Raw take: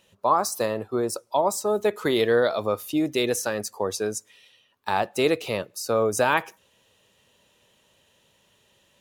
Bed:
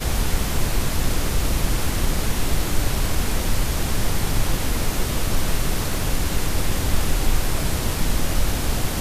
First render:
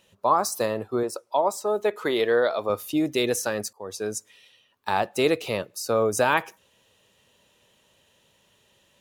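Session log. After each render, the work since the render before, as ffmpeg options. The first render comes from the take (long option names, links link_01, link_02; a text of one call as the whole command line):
ffmpeg -i in.wav -filter_complex "[0:a]asettb=1/sr,asplit=3[link_01][link_02][link_03];[link_01]atrim=end=1.034[link_04];[link_02]atrim=start=1.03:end=2.7,asetpts=PTS-STARTPTS,afade=type=in:duration=0.004:curve=qsin,afade=type=out:start_time=1.666:duration=0.004:curve=qsin,bass=frequency=250:gain=-10,treble=frequency=4000:gain=-6[link_05];[link_03]atrim=start=2.696[link_06];[link_04][link_05]acrossfade=duration=0.004:curve1=hsin:curve2=qsin[link_07];[link_07][link_06]acrossfade=duration=0.004:curve1=qsin:curve2=hsin,asplit=2[link_08][link_09];[link_08]atrim=end=3.73,asetpts=PTS-STARTPTS,afade=type=out:start_time=3.726:duration=0.004:curve=hsin:silence=0.0707946[link_10];[link_09]atrim=start=3.73,asetpts=PTS-STARTPTS,afade=type=in:duration=0.44:silence=0.0707946[link_11];[link_10][link_11]concat=n=2:v=0:a=1" out.wav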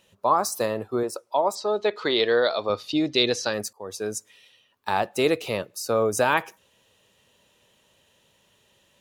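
ffmpeg -i in.wav -filter_complex "[0:a]asettb=1/sr,asplit=3[link_01][link_02][link_03];[link_01]atrim=end=1.554[link_04];[link_02]atrim=start=1.55:end=3.54,asetpts=PTS-STARTPTS,afade=type=in:duration=0.004:curve=qsin,afade=type=out:start_time=1.986:duration=0.004:curve=qsin,lowpass=frequency=4400:width_type=q:width=3.9[link_05];[link_03]atrim=start=3.536[link_06];[link_04][link_05]acrossfade=duration=0.004:curve1=hsin:curve2=qsin[link_07];[link_07][link_06]acrossfade=duration=0.004:curve1=qsin:curve2=hsin" out.wav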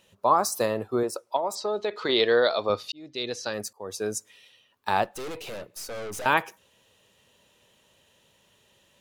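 ffmpeg -i in.wav -filter_complex "[0:a]asettb=1/sr,asplit=3[link_01][link_02][link_03];[link_01]atrim=end=1.364[link_04];[link_02]atrim=start=1.36:end=2.09,asetpts=PTS-STARTPTS,afade=type=in:duration=0.004:curve=qsin,afade=type=out:start_time=0.726:duration=0.004:curve=qsin,acompressor=threshold=-23dB:ratio=6:attack=3.2:release=140:knee=1:detection=peak[link_05];[link_03]atrim=start=2.086[link_06];[link_04][link_05]acrossfade=duration=0.004:curve1=hsin:curve2=qsin[link_07];[link_07][link_06]acrossfade=duration=0.004:curve1=qsin:curve2=hsin,asettb=1/sr,asplit=3[link_08][link_09][link_10];[link_08]atrim=end=5.044[link_11];[link_09]atrim=start=5.04:end=6.26,asetpts=PTS-STARTPTS,afade=type=in:duration=0.004:curve=qsin,afade=type=out:start_time=1.216:duration=0.004:curve=qsin,aeval=exprs='(tanh(50.1*val(0)+0.45)-tanh(0.45))/50.1':channel_layout=same[link_12];[link_10]atrim=start=6.256[link_13];[link_11][link_12]acrossfade=duration=0.004:curve1=hsin:curve2=qsin[link_14];[link_14][link_13]acrossfade=duration=0.004:curve1=qsin:curve2=hsin,asplit=2[link_15][link_16];[link_15]atrim=end=2.92,asetpts=PTS-STARTPTS,afade=type=out:start_time=2.916:duration=0.004:curve=hsin[link_17];[link_16]atrim=start=2.92,asetpts=PTS-STARTPTS,afade=type=in:duration=1.01[link_18];[link_17][link_18]concat=n=2:v=0:a=1" out.wav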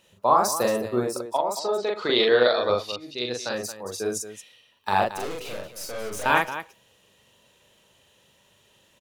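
ffmpeg -i in.wav -af "aecho=1:1:40.82|224.5:0.794|0.282" out.wav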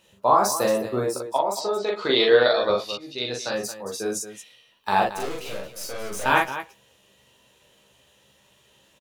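ffmpeg -i in.wav -filter_complex "[0:a]asplit=2[link_01][link_02];[link_02]adelay=15,volume=-5dB[link_03];[link_01][link_03]amix=inputs=2:normalize=0" out.wav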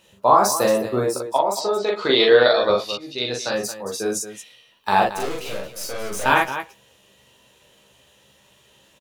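ffmpeg -i in.wav -af "volume=3.5dB,alimiter=limit=-3dB:level=0:latency=1" out.wav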